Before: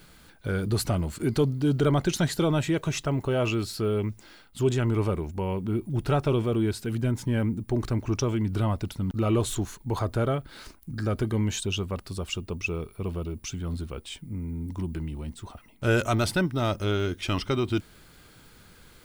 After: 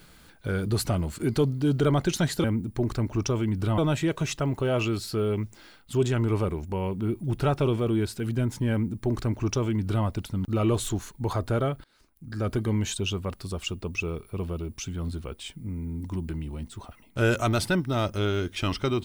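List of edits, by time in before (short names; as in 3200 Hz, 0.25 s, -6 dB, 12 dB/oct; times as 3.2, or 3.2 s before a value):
7.37–8.71 copy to 2.44
10.5–11.14 fade in quadratic, from -21.5 dB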